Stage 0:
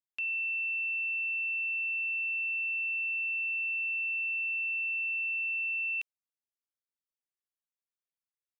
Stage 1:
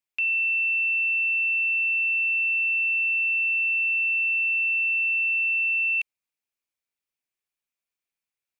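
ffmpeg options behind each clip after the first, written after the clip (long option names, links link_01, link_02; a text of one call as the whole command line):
ffmpeg -i in.wav -af "equalizer=frequency=2400:width_type=o:width=0.36:gain=9,acontrast=73,volume=-3dB" out.wav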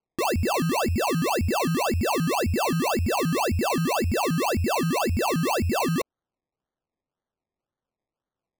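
ffmpeg -i in.wav -af "acrusher=samples=24:mix=1:aa=0.000001:lfo=1:lforange=14.4:lforate=1.9" out.wav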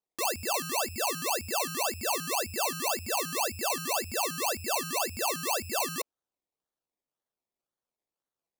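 ffmpeg -i in.wav -filter_complex "[0:a]bass=frequency=250:gain=-8,treble=frequency=4000:gain=9,acrossover=split=470[link_01][link_02];[link_01]alimiter=level_in=10dB:limit=-24dB:level=0:latency=1,volume=-10dB[link_03];[link_03][link_02]amix=inputs=2:normalize=0,volume=-5.5dB" out.wav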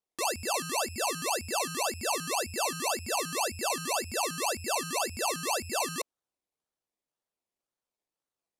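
ffmpeg -i in.wav -af "lowpass=frequency=12000:width=0.5412,lowpass=frequency=12000:width=1.3066" out.wav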